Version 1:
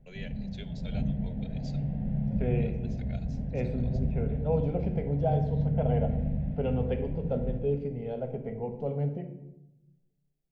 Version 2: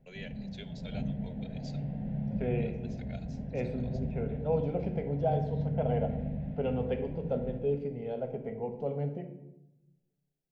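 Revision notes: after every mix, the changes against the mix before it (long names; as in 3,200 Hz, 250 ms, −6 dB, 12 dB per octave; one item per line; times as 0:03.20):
master: add low-shelf EQ 110 Hz −12 dB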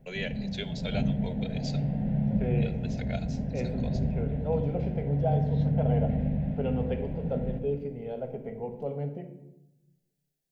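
first voice +11.0 dB
background +7.0 dB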